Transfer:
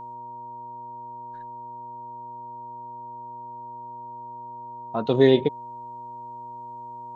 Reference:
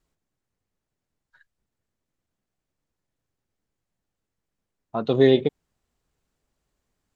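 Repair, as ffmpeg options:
-af "bandreject=f=121.9:t=h:w=4,bandreject=f=243.8:t=h:w=4,bandreject=f=365.7:t=h:w=4,bandreject=f=487.6:t=h:w=4,bandreject=f=609.5:t=h:w=4,bandreject=f=940:w=30"

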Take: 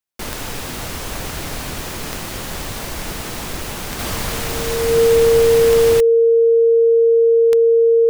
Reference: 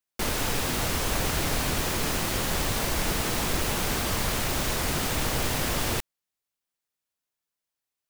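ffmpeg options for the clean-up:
-af "adeclick=t=4,bandreject=f=460:w=30,asetnsamples=n=441:p=0,asendcmd='3.99 volume volume -4dB',volume=1"

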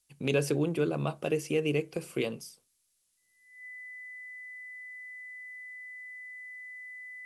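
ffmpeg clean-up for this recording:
-af "bandreject=f=2000:w=30,agate=range=0.0891:threshold=0.000562"

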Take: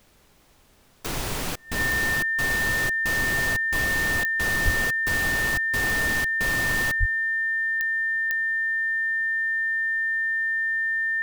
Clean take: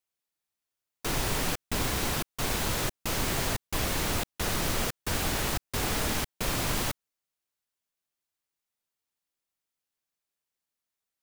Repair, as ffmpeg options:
-filter_complex "[0:a]adeclick=t=4,bandreject=f=1800:w=30,asplit=3[s0][s1][s2];[s0]afade=t=out:st=4.64:d=0.02[s3];[s1]highpass=f=140:w=0.5412,highpass=f=140:w=1.3066,afade=t=in:st=4.64:d=0.02,afade=t=out:st=4.76:d=0.02[s4];[s2]afade=t=in:st=4.76:d=0.02[s5];[s3][s4][s5]amix=inputs=3:normalize=0,asplit=3[s6][s7][s8];[s6]afade=t=out:st=6.99:d=0.02[s9];[s7]highpass=f=140:w=0.5412,highpass=f=140:w=1.3066,afade=t=in:st=6.99:d=0.02,afade=t=out:st=7.11:d=0.02[s10];[s8]afade=t=in:st=7.11:d=0.02[s11];[s9][s10][s11]amix=inputs=3:normalize=0,agate=range=0.0891:threshold=0.01"

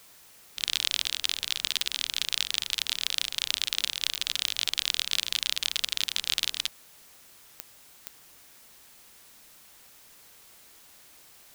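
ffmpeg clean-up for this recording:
-af "adeclick=t=4,afftdn=nr=23:nf=-54"

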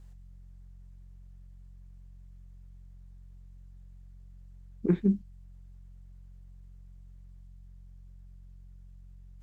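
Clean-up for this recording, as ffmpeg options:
-af "bandreject=f=45.1:t=h:w=4,bandreject=f=90.2:t=h:w=4,bandreject=f=135.3:t=h:w=4,bandreject=f=180.4:t=h:w=4"

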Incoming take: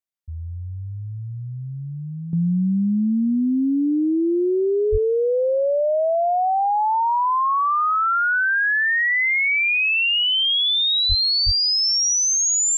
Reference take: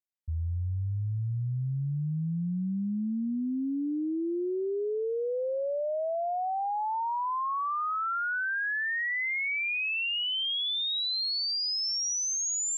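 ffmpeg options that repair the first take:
-filter_complex "[0:a]asplit=3[s0][s1][s2];[s0]afade=t=out:st=4.91:d=0.02[s3];[s1]highpass=f=140:w=0.5412,highpass=f=140:w=1.3066,afade=t=in:st=4.91:d=0.02,afade=t=out:st=5.03:d=0.02[s4];[s2]afade=t=in:st=5.03:d=0.02[s5];[s3][s4][s5]amix=inputs=3:normalize=0,asplit=3[s6][s7][s8];[s6]afade=t=out:st=11.08:d=0.02[s9];[s7]highpass=f=140:w=0.5412,highpass=f=140:w=1.3066,afade=t=in:st=11.08:d=0.02,afade=t=out:st=11.2:d=0.02[s10];[s8]afade=t=in:st=11.2:d=0.02[s11];[s9][s10][s11]amix=inputs=3:normalize=0,asplit=3[s12][s13][s14];[s12]afade=t=out:st=11.45:d=0.02[s15];[s13]highpass=f=140:w=0.5412,highpass=f=140:w=1.3066,afade=t=in:st=11.45:d=0.02,afade=t=out:st=11.57:d=0.02[s16];[s14]afade=t=in:st=11.57:d=0.02[s17];[s15][s16][s17]amix=inputs=3:normalize=0,asetnsamples=n=441:p=0,asendcmd='2.33 volume volume -11dB',volume=1"

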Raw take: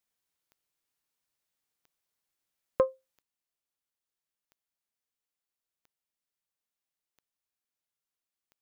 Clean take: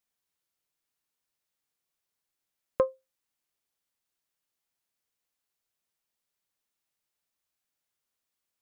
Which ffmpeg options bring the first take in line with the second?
-af "adeclick=t=4,asetnsamples=n=441:p=0,asendcmd='3.22 volume volume 7dB',volume=1"

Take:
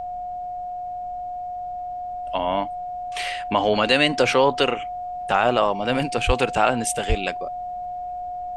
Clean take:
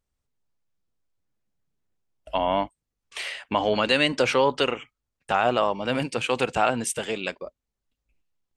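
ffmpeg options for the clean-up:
-filter_complex "[0:a]bandreject=f=720:w=30,asplit=3[s0][s1][s2];[s0]afade=t=out:st=6.26:d=0.02[s3];[s1]highpass=f=140:w=0.5412,highpass=f=140:w=1.3066,afade=t=in:st=6.26:d=0.02,afade=t=out:st=6.38:d=0.02[s4];[s2]afade=t=in:st=6.38:d=0.02[s5];[s3][s4][s5]amix=inputs=3:normalize=0,asplit=3[s6][s7][s8];[s6]afade=t=out:st=7.08:d=0.02[s9];[s7]highpass=f=140:w=0.5412,highpass=f=140:w=1.3066,afade=t=in:st=7.08:d=0.02,afade=t=out:st=7.2:d=0.02[s10];[s8]afade=t=in:st=7.2:d=0.02[s11];[s9][s10][s11]amix=inputs=3:normalize=0,agate=range=0.0891:threshold=0.0708,asetnsamples=n=441:p=0,asendcmd='2.92 volume volume -3dB',volume=1"

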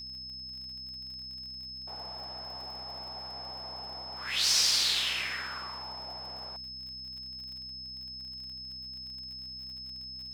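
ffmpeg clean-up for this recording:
-af "adeclick=t=4,bandreject=f=64.2:t=h:w=4,bandreject=f=128.4:t=h:w=4,bandreject=f=192.6:t=h:w=4,bandreject=f=256.8:t=h:w=4,bandreject=f=5200:w=30"

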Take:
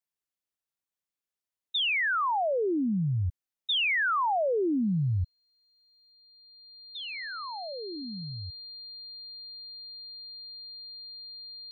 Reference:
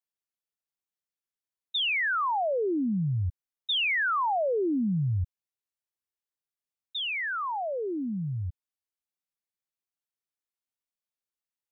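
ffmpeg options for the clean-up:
-af "bandreject=f=4200:w=30,asetnsamples=n=441:p=0,asendcmd='6.12 volume volume 7.5dB',volume=1"

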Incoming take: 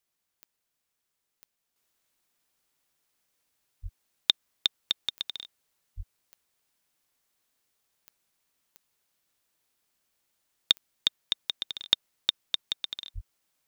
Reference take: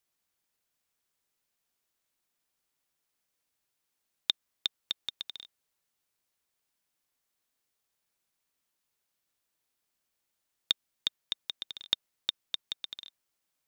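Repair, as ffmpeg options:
-filter_complex "[0:a]adeclick=t=4,asplit=3[s0][s1][s2];[s0]afade=t=out:st=3.82:d=0.02[s3];[s1]highpass=f=140:w=0.5412,highpass=f=140:w=1.3066,afade=t=in:st=3.82:d=0.02,afade=t=out:st=3.94:d=0.02[s4];[s2]afade=t=in:st=3.94:d=0.02[s5];[s3][s4][s5]amix=inputs=3:normalize=0,asplit=3[s6][s7][s8];[s6]afade=t=out:st=5.96:d=0.02[s9];[s7]highpass=f=140:w=0.5412,highpass=f=140:w=1.3066,afade=t=in:st=5.96:d=0.02,afade=t=out:st=6.08:d=0.02[s10];[s8]afade=t=in:st=6.08:d=0.02[s11];[s9][s10][s11]amix=inputs=3:normalize=0,asplit=3[s12][s13][s14];[s12]afade=t=out:st=13.14:d=0.02[s15];[s13]highpass=f=140:w=0.5412,highpass=f=140:w=1.3066,afade=t=in:st=13.14:d=0.02,afade=t=out:st=13.26:d=0.02[s16];[s14]afade=t=in:st=13.26:d=0.02[s17];[s15][s16][s17]amix=inputs=3:normalize=0,asetnsamples=n=441:p=0,asendcmd='1.76 volume volume -5.5dB',volume=1"

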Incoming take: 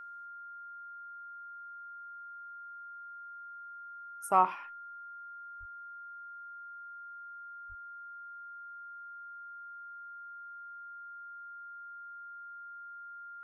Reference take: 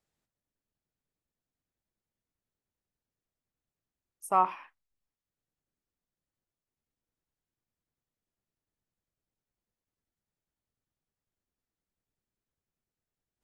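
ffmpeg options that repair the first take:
-filter_complex "[0:a]bandreject=f=1400:w=30,asplit=3[s0][s1][s2];[s0]afade=t=out:st=5.59:d=0.02[s3];[s1]highpass=f=140:w=0.5412,highpass=f=140:w=1.3066,afade=t=in:st=5.59:d=0.02,afade=t=out:st=5.71:d=0.02[s4];[s2]afade=t=in:st=5.71:d=0.02[s5];[s3][s4][s5]amix=inputs=3:normalize=0,asplit=3[s6][s7][s8];[s6]afade=t=out:st=7.68:d=0.02[s9];[s7]highpass=f=140:w=0.5412,highpass=f=140:w=1.3066,afade=t=in:st=7.68:d=0.02,afade=t=out:st=7.8:d=0.02[s10];[s8]afade=t=in:st=7.8:d=0.02[s11];[s9][s10][s11]amix=inputs=3:normalize=0"

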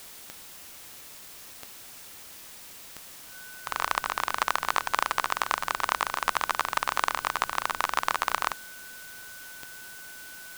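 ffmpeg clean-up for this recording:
-af "adeclick=t=4,bandreject=f=1500:w=30,afwtdn=0.005"

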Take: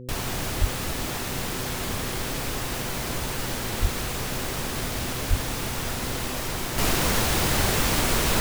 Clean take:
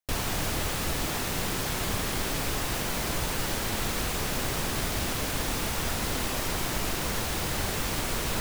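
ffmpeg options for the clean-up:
-filter_complex "[0:a]bandreject=f=125.1:t=h:w=4,bandreject=f=250.2:t=h:w=4,bandreject=f=375.3:t=h:w=4,bandreject=f=500.4:t=h:w=4,asplit=3[s0][s1][s2];[s0]afade=t=out:st=0.6:d=0.02[s3];[s1]highpass=f=140:w=0.5412,highpass=f=140:w=1.3066,afade=t=in:st=0.6:d=0.02,afade=t=out:st=0.72:d=0.02[s4];[s2]afade=t=in:st=0.72:d=0.02[s5];[s3][s4][s5]amix=inputs=3:normalize=0,asplit=3[s6][s7][s8];[s6]afade=t=out:st=3.81:d=0.02[s9];[s7]highpass=f=140:w=0.5412,highpass=f=140:w=1.3066,afade=t=in:st=3.81:d=0.02,afade=t=out:st=3.93:d=0.02[s10];[s8]afade=t=in:st=3.93:d=0.02[s11];[s9][s10][s11]amix=inputs=3:normalize=0,asplit=3[s12][s13][s14];[s12]afade=t=out:st=5.29:d=0.02[s15];[s13]highpass=f=140:w=0.5412,highpass=f=140:w=1.3066,afade=t=in:st=5.29:d=0.02,afade=t=out:st=5.41:d=0.02[s16];[s14]afade=t=in:st=5.41:d=0.02[s17];[s15][s16][s17]amix=inputs=3:normalize=0,asetnsamples=n=441:p=0,asendcmd='6.78 volume volume -7dB',volume=1"

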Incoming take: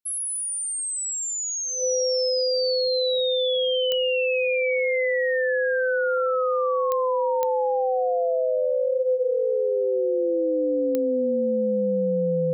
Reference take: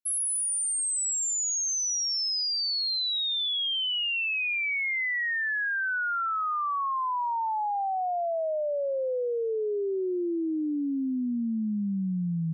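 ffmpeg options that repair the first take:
-af "adeclick=t=4,bandreject=f=510:w=30"

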